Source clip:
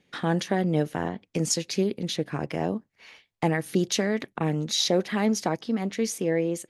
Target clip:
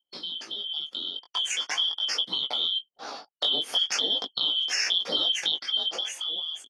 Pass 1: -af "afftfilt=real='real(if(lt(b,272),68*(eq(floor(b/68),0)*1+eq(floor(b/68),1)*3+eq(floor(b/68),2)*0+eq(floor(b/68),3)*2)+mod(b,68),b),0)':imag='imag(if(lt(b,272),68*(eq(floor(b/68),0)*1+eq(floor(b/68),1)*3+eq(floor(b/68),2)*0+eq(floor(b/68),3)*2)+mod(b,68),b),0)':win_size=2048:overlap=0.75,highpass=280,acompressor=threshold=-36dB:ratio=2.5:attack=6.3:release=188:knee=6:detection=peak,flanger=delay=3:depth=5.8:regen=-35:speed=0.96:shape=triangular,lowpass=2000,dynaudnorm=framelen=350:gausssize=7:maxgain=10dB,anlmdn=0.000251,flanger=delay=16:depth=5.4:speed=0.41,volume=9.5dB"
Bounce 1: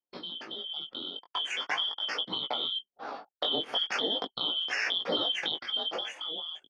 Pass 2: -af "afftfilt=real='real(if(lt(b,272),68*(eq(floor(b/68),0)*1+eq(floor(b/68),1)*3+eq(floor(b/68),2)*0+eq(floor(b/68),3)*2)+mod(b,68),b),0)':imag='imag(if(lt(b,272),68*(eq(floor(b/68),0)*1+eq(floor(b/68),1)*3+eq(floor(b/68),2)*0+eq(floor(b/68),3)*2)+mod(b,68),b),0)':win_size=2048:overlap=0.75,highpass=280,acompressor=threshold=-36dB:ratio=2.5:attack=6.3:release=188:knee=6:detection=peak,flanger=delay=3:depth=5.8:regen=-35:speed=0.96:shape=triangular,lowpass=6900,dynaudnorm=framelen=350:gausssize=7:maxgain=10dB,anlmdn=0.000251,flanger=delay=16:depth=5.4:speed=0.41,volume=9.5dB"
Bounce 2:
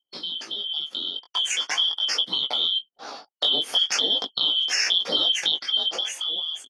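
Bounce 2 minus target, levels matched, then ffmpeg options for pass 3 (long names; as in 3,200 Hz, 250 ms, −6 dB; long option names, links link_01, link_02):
downward compressor: peak gain reduction −3.5 dB
-af "afftfilt=real='real(if(lt(b,272),68*(eq(floor(b/68),0)*1+eq(floor(b/68),1)*3+eq(floor(b/68),2)*0+eq(floor(b/68),3)*2)+mod(b,68),b),0)':imag='imag(if(lt(b,272),68*(eq(floor(b/68),0)*1+eq(floor(b/68),1)*3+eq(floor(b/68),2)*0+eq(floor(b/68),3)*2)+mod(b,68),b),0)':win_size=2048:overlap=0.75,highpass=280,acompressor=threshold=-42dB:ratio=2.5:attack=6.3:release=188:knee=6:detection=peak,flanger=delay=3:depth=5.8:regen=-35:speed=0.96:shape=triangular,lowpass=6900,dynaudnorm=framelen=350:gausssize=7:maxgain=10dB,anlmdn=0.000251,flanger=delay=16:depth=5.4:speed=0.41,volume=9.5dB"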